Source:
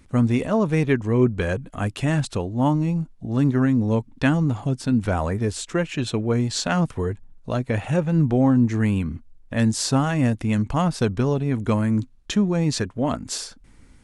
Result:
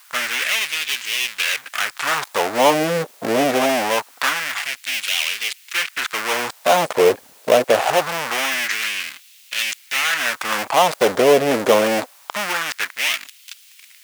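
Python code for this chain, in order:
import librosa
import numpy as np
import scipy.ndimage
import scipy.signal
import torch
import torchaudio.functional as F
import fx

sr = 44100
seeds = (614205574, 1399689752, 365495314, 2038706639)

y = fx.dead_time(x, sr, dead_ms=0.29)
y = fx.leveller(y, sr, passes=5)
y = fx.quant_dither(y, sr, seeds[0], bits=8, dither='triangular')
y = fx.filter_lfo_highpass(y, sr, shape='sine', hz=0.24, low_hz=490.0, high_hz=2700.0, q=1.9)
y = F.gain(torch.from_numpy(y), -1.0).numpy()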